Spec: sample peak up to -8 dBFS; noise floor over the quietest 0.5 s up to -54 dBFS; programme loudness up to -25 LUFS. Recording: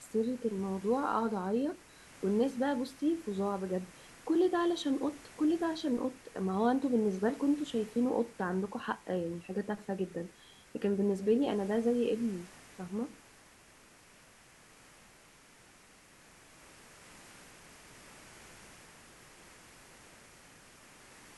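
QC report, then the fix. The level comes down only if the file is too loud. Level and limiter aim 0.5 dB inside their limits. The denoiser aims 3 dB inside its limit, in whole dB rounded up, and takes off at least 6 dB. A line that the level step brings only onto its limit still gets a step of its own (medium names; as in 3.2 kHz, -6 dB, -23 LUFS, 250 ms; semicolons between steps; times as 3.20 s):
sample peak -17.0 dBFS: pass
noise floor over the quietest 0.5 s -60 dBFS: pass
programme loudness -33.0 LUFS: pass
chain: none needed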